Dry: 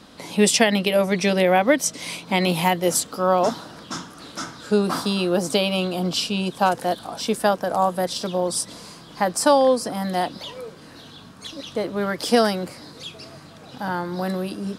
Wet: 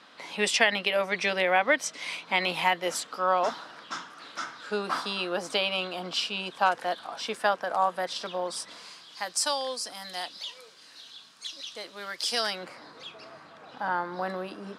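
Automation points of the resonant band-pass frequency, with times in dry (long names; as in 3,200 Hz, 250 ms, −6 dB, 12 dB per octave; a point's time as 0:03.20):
resonant band-pass, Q 0.81
0:08.70 1,800 Hz
0:09.19 4,700 Hz
0:12.36 4,700 Hz
0:12.76 1,200 Hz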